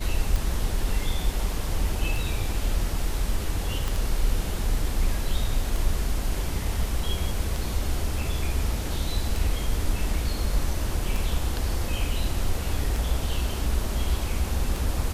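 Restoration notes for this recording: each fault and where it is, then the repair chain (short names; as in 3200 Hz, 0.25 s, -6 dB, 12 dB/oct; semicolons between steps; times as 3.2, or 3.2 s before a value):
tick 33 1/3 rpm
3.88 pop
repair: de-click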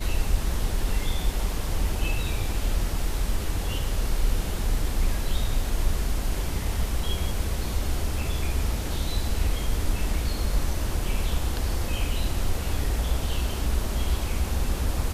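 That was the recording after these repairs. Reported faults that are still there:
3.88 pop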